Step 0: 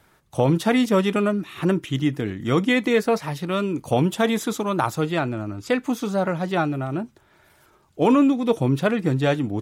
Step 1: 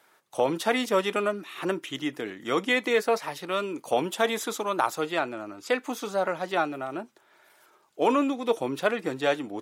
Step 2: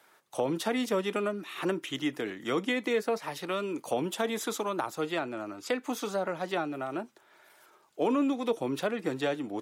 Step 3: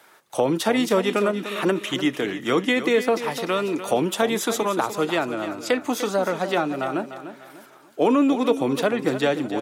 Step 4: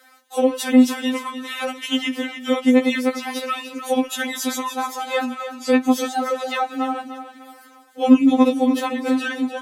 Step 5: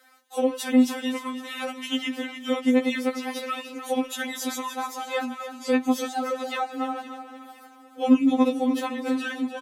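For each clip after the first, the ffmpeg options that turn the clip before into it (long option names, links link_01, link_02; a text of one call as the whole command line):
ffmpeg -i in.wav -af "highpass=420,volume=-1.5dB" out.wav
ffmpeg -i in.wav -filter_complex "[0:a]acrossover=split=380[link_01][link_02];[link_02]acompressor=threshold=-31dB:ratio=4[link_03];[link_01][link_03]amix=inputs=2:normalize=0" out.wav
ffmpeg -i in.wav -af "aecho=1:1:298|596|894|1192:0.266|0.0958|0.0345|0.0124,volume=8.5dB" out.wav
ffmpeg -i in.wav -af "afftfilt=real='re*3.46*eq(mod(b,12),0)':imag='im*3.46*eq(mod(b,12),0)':win_size=2048:overlap=0.75,volume=4dB" out.wav
ffmpeg -i in.wav -af "aecho=1:1:513|1026|1539:0.133|0.0533|0.0213,volume=-5.5dB" out.wav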